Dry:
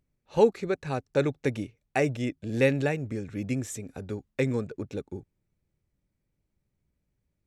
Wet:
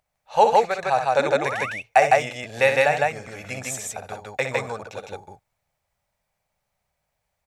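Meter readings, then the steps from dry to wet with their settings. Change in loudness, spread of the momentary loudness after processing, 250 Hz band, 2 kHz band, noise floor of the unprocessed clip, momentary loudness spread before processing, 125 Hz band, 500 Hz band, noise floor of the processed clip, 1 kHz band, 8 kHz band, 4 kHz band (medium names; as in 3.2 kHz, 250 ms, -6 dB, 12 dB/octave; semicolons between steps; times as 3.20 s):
+7.5 dB, 17 LU, -7.5 dB, +11.0 dB, -80 dBFS, 14 LU, -5.5 dB, +5.5 dB, -79 dBFS, +17.0 dB, +10.0 dB, +10.0 dB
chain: resonant low shelf 480 Hz -14 dB, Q 3; painted sound rise, 1.19–1.66 s, 230–2800 Hz -38 dBFS; loudspeakers at several distances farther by 21 m -8 dB, 54 m -1 dB; trim +7 dB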